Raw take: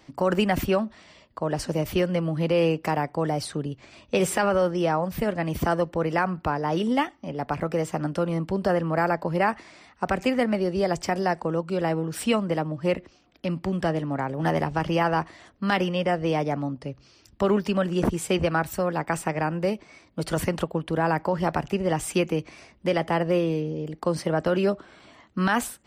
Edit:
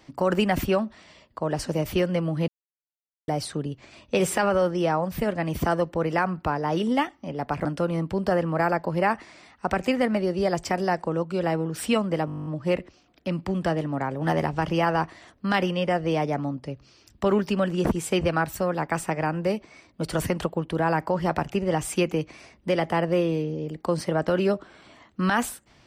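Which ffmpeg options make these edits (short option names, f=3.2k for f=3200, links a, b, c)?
-filter_complex "[0:a]asplit=14[a][b][c][d][e][f][g][h][i][j][k][l][m][n];[a]atrim=end=2.48,asetpts=PTS-STARTPTS,afade=t=out:st=2.476:d=0.004:c=hsin[o];[b]atrim=start=2.48:end=3.28,asetpts=PTS-STARTPTS,volume=0[p];[c]atrim=start=3.28:end=7.652,asetpts=PTS-STARTPTS,afade=t=in:d=0.004:c=hsin[q];[d]atrim=start=8.028:end=12.662[r];[e]atrim=start=12.638:end=12.662[s];[f]atrim=start=12.638:end=12.662[t];[g]atrim=start=12.638:end=12.662[u];[h]atrim=start=12.638:end=12.662[v];[i]atrim=start=12.638:end=12.662[w];[j]atrim=start=12.638:end=12.662[x];[k]atrim=start=12.638:end=12.662[y];[l]atrim=start=12.638:end=12.662[z];[m]atrim=start=12.638:end=12.662[aa];[n]atrim=start=12.638[ab];[o][p][q]concat=n=3:v=0:a=1[ac];[ac][r]acrossfade=d=0.004:c1=hsin:c2=hsin[ad];[ad][s]acrossfade=d=0.004:c1=hsin:c2=hsin[ae];[ae][t]acrossfade=d=0.004:c1=hsin:c2=hsin[af];[af][u]acrossfade=d=0.004:c1=hsin:c2=hsin[ag];[ag][v]acrossfade=d=0.004:c1=hsin:c2=hsin[ah];[ah][w]acrossfade=d=0.004:c1=hsin:c2=hsin[ai];[ai][x]acrossfade=d=0.004:c1=hsin:c2=hsin[aj];[aj][y]acrossfade=d=0.004:c1=hsin:c2=hsin[ak];[ak][z]acrossfade=d=0.004:c1=hsin:c2=hsin[al];[al][aa]acrossfade=d=0.004:c1=hsin:c2=hsin[am];[am][ab]acrossfade=d=0.004:c1=hsin:c2=hsin"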